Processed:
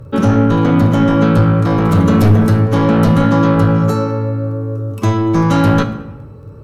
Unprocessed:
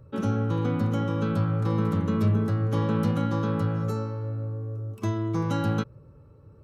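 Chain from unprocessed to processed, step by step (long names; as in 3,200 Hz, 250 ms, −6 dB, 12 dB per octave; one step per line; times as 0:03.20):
sine wavefolder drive 6 dB, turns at −13.5 dBFS
surface crackle 13 per second −45 dBFS
0:01.89–0:02.58: high-shelf EQ 5,100 Hz +9 dB
convolution reverb RT60 1.0 s, pre-delay 7 ms, DRR 7.5 dB
level +6 dB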